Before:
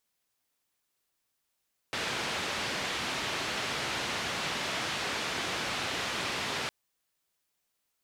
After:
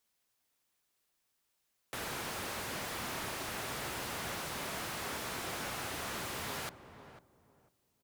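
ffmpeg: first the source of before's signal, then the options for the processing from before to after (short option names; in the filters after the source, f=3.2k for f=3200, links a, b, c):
-f lavfi -i "anoisesrc=c=white:d=4.76:r=44100:seed=1,highpass=f=80,lowpass=f=3500,volume=-21dB"
-filter_complex "[0:a]acrossover=split=110|1900[a][b][c];[b]alimiter=level_in=9.5dB:limit=-24dB:level=0:latency=1:release=442,volume=-9.5dB[d];[c]aeval=exprs='0.0106*(abs(mod(val(0)/0.0106+3,4)-2)-1)':c=same[e];[a][d][e]amix=inputs=3:normalize=0,asplit=2[f][g];[g]adelay=498,lowpass=f=930:p=1,volume=-10dB,asplit=2[h][i];[i]adelay=498,lowpass=f=930:p=1,volume=0.25,asplit=2[j][k];[k]adelay=498,lowpass=f=930:p=1,volume=0.25[l];[f][h][j][l]amix=inputs=4:normalize=0"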